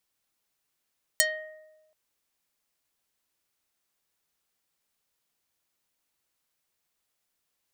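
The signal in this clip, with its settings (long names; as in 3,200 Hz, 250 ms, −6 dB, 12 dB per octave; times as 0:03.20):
Karplus-Strong string D#5, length 0.73 s, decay 1.17 s, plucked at 0.49, dark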